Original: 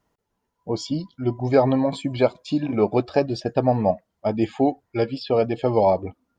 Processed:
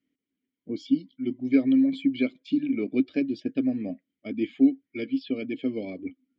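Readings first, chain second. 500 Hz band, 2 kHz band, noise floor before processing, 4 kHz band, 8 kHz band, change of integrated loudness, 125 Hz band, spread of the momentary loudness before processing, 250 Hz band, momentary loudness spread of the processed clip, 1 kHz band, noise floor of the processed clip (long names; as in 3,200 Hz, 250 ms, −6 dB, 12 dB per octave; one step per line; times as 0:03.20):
−14.0 dB, −3.0 dB, −78 dBFS, −7.5 dB, can't be measured, −4.0 dB, −17.5 dB, 8 LU, +1.0 dB, 14 LU, below −25 dB, below −85 dBFS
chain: harmonic and percussive parts rebalanced percussive +5 dB
formant filter i
level +2.5 dB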